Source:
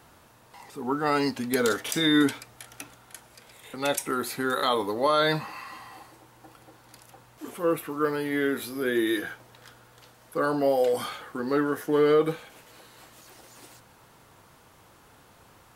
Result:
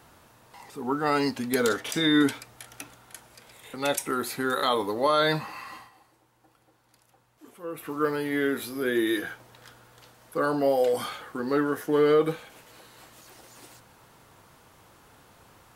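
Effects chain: 1.68–2.25 high shelf 8600 Hz -7.5 dB; 5.75–7.89 dip -11.5 dB, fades 0.16 s

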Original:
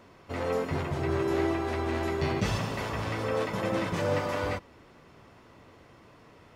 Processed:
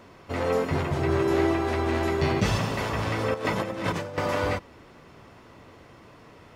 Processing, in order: 3.34–4.18 negative-ratio compressor -33 dBFS, ratio -0.5; gain +4.5 dB

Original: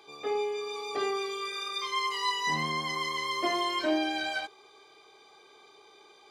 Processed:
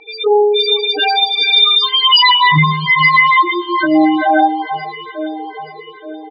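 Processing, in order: 0.56–1.5 spectral contrast lowered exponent 0.54; notch 2200 Hz, Q 20; comb 6.4 ms, depth 68%; 2.05–2.65 companded quantiser 2-bit; 3.37–3.79 negative-ratio compressor -32 dBFS, ratio -0.5; loudest bins only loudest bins 4; low-pass sweep 3700 Hz -> 510 Hz, 2.45–5.08; echo with dull and thin repeats by turns 0.438 s, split 1500 Hz, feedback 65%, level -13 dB; maximiser +22 dB; cascading phaser rising 1.2 Hz

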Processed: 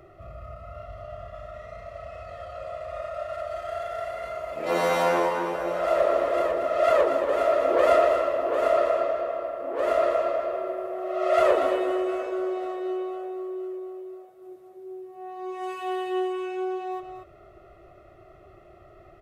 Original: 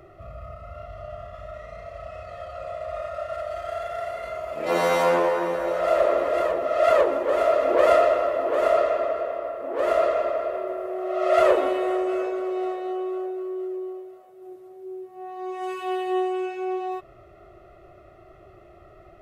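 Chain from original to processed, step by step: on a send: echo 0.233 s -8.5 dB; on the sum: gain -2 dB

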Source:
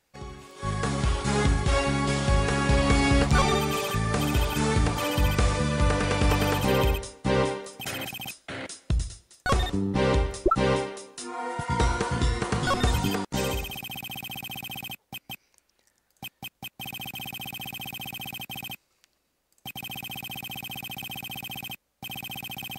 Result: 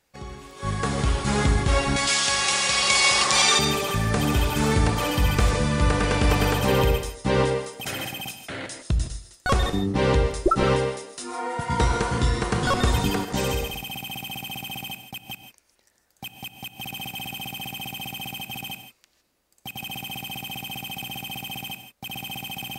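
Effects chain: 1.96–3.59 weighting filter ITU-R 468; non-linear reverb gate 0.18 s rising, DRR 7.5 dB; 2.42–3.38 spectral repair 250–2000 Hz both; gain +2 dB

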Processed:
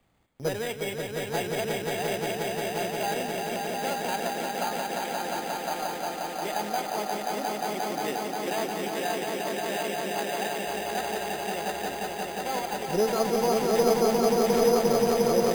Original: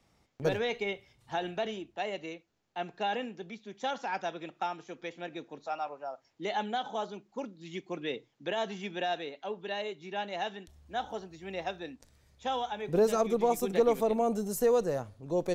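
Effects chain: swelling echo 0.177 s, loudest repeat 5, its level -4 dB; careless resampling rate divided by 8×, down none, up hold

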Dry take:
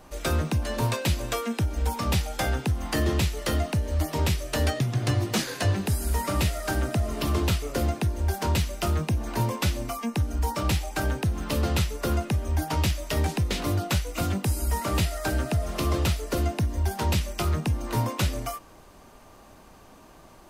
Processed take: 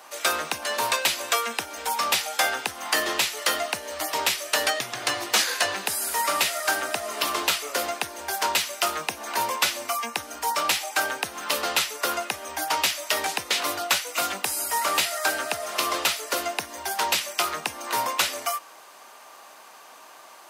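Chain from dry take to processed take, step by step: HPF 830 Hz 12 dB/oct; gain +8.5 dB

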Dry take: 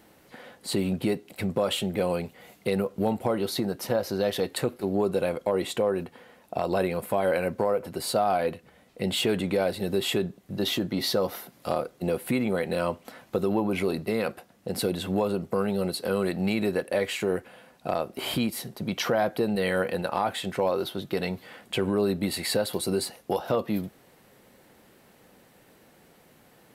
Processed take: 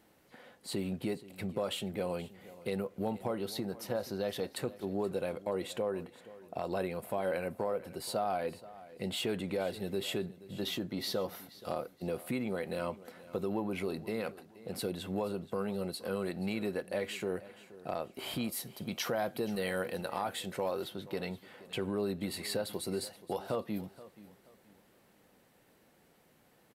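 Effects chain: 18.44–20.85 high shelf 5500 Hz +8 dB; feedback echo 0.477 s, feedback 31%, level -18 dB; gain -9 dB

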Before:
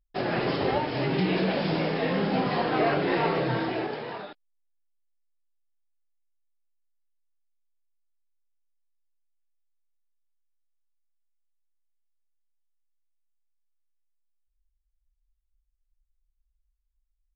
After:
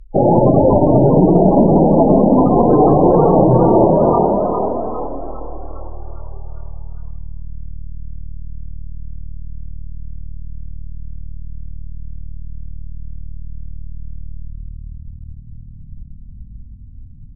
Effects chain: tilt -4.5 dB/oct; compressor 8:1, threshold -23 dBFS, peak gain reduction 12 dB; spring tank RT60 1.9 s, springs 39/56 ms, chirp 40 ms, DRR 10.5 dB; loudest bins only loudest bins 32; formant shift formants +3 st; treble ducked by the level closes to 1200 Hz, closed at -24 dBFS; on a send: frequency-shifting echo 0.405 s, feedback 54%, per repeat +38 Hz, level -5.5 dB; on the sum: dynamic EQ 750 Hz, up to +4 dB, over -41 dBFS, Q 0.91; maximiser +15 dB; gain -1 dB

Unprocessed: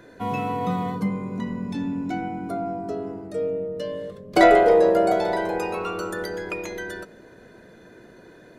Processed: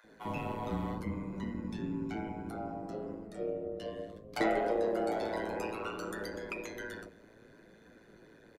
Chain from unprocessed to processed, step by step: compressor 2:1, threshold -20 dBFS, peak gain reduction 6 dB; AM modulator 110 Hz, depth 95%; bands offset in time highs, lows 40 ms, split 730 Hz; flange 0.63 Hz, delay 3.4 ms, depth 7.6 ms, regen -45%; gain -1 dB

